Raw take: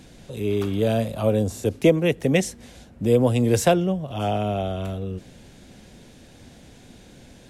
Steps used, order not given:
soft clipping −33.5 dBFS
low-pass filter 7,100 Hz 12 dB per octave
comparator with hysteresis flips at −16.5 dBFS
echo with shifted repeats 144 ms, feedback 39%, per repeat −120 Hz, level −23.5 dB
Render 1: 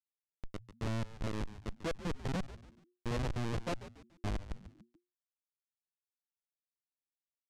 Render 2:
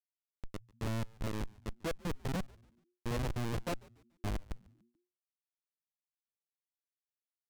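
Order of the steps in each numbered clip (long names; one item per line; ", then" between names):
comparator with hysteresis, then echo with shifted repeats, then soft clipping, then low-pass filter
comparator with hysteresis, then low-pass filter, then soft clipping, then echo with shifted repeats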